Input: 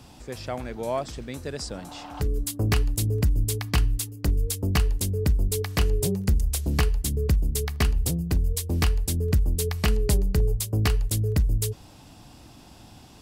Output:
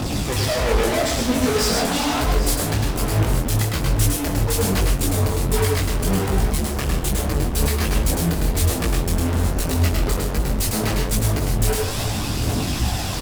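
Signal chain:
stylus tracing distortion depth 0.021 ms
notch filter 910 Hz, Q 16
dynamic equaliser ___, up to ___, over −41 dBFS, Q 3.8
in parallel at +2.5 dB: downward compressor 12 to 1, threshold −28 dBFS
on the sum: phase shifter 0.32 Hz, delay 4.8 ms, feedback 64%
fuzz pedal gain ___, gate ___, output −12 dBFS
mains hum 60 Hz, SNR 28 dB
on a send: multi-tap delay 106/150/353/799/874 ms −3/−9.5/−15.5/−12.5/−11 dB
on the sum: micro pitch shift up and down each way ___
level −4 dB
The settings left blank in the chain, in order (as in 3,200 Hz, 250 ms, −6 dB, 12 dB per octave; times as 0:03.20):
130 Hz, −4 dB, 39 dB, −45 dBFS, 43 cents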